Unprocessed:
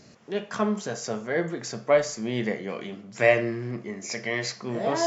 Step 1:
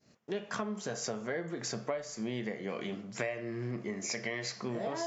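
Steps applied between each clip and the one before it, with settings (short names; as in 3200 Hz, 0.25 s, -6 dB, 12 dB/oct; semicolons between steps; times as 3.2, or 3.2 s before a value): expander -43 dBFS; compressor 16:1, threshold -32 dBFS, peak gain reduction 19.5 dB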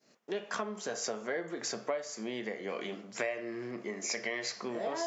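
HPF 290 Hz 12 dB/oct; gain +1.5 dB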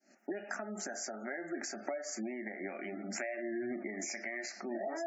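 recorder AGC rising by 67 dB/s; fixed phaser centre 700 Hz, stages 8; spectral gate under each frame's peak -25 dB strong; gain -3 dB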